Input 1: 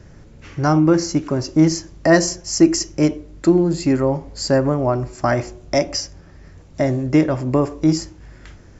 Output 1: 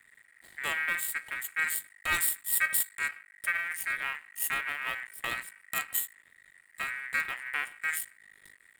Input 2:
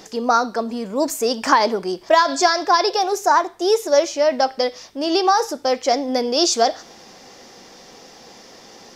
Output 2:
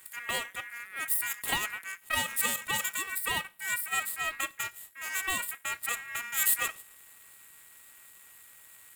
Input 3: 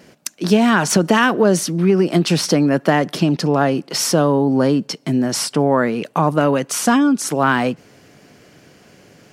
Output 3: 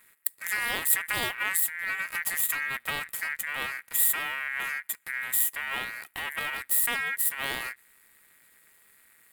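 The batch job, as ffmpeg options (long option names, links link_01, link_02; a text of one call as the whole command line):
ffmpeg -i in.wav -af "aeval=exprs='max(val(0),0)':channel_layout=same,aeval=exprs='val(0)*sin(2*PI*1900*n/s)':channel_layout=same,aexciter=amount=14.2:drive=2.9:freq=8500,volume=-11dB" out.wav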